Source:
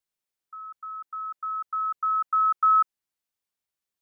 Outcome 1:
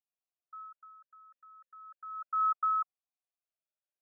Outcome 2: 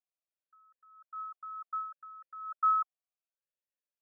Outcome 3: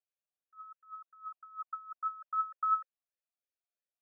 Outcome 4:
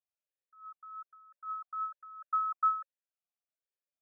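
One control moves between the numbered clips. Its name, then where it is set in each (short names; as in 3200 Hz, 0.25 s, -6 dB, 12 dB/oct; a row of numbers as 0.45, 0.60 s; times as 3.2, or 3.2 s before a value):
vowel sweep, rate: 0.33, 0.68, 3, 1.2 Hz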